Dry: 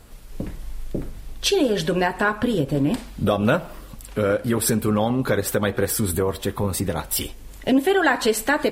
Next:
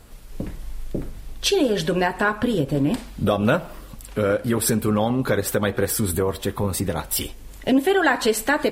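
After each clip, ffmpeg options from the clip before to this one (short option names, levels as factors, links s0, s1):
-af anull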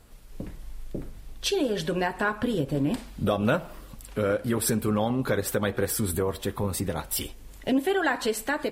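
-af "dynaudnorm=f=830:g=5:m=1.41,volume=0.447"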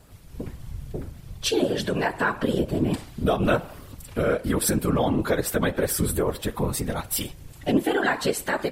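-af "afftfilt=real='hypot(re,im)*cos(2*PI*random(0))':imag='hypot(re,im)*sin(2*PI*random(1))':win_size=512:overlap=0.75,volume=2.66"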